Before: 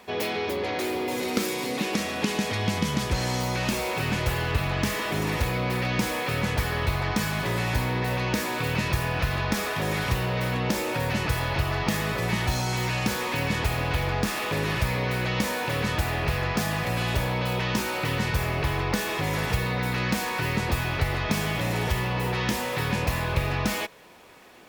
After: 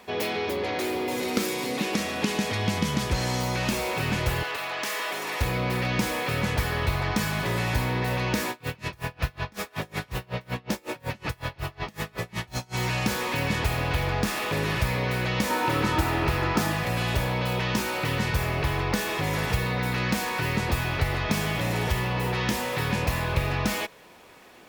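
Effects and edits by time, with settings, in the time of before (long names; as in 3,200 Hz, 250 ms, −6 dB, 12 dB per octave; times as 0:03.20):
0:04.43–0:05.41: high-pass filter 560 Hz
0:08.50–0:12.76: tremolo with a sine in dB 5.4 Hz, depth 31 dB
0:15.50–0:16.72: hollow resonant body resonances 320/920/1,300 Hz, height 11 dB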